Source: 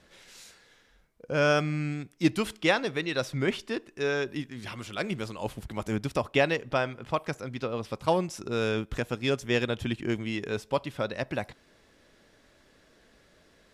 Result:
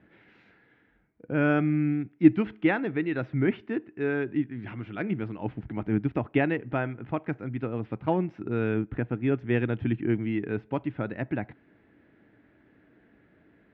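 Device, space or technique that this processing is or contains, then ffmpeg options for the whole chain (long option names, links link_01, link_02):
bass cabinet: -filter_complex "[0:a]asettb=1/sr,asplit=3[link_01][link_02][link_03];[link_01]atrim=end=8.744[link_04];[link_02]atrim=start=8.74:end=9.32,asetpts=PTS-STARTPTS,afade=type=in:duration=0.004:curve=qsin,afade=type=out:start_time=0.576:duration=0.004:curve=qsin,lowpass=frequency=2400:poles=1[link_05];[link_03]atrim=start=9.316[link_06];[link_04][link_05]acrossfade=duration=0.004:curve1=hsin:curve2=qsin[link_07];[link_07][link_06]acrossfade=duration=0.004:curve1=qsin:curve2=hsin,highpass=66,equalizer=frequency=120:width_type=q:width=4:gain=6,equalizer=frequency=200:width_type=q:width=4:gain=4,equalizer=frequency=300:width_type=q:width=4:gain=9,equalizer=frequency=550:width_type=q:width=4:gain=-7,equalizer=frequency=1100:width_type=q:width=4:gain=-8,lowpass=frequency=2200:width=0.5412,lowpass=frequency=2200:width=1.3066"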